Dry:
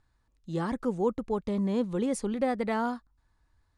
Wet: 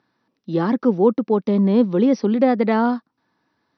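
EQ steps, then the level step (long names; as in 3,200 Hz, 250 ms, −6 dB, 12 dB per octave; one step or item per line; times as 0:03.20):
high-pass filter 200 Hz 24 dB per octave
linear-phase brick-wall low-pass 6,000 Hz
low-shelf EQ 410 Hz +9 dB
+7.5 dB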